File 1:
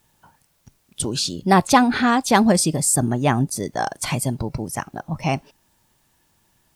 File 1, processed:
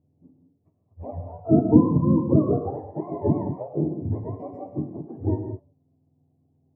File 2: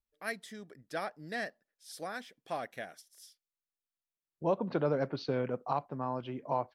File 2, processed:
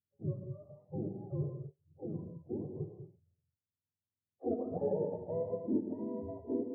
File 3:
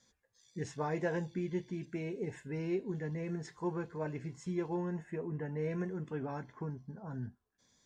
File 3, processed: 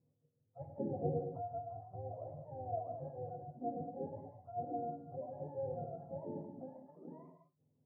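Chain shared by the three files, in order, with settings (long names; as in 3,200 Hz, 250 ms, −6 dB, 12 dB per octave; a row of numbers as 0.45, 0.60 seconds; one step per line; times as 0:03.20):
frequency axis turned over on the octave scale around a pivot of 500 Hz
inverse Chebyshev low-pass filter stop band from 1,400 Hz, stop band 40 dB
reverb whose tail is shaped and stops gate 240 ms flat, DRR 4 dB
level −1 dB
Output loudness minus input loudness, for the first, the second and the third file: −3.5, −2.5, −5.0 LU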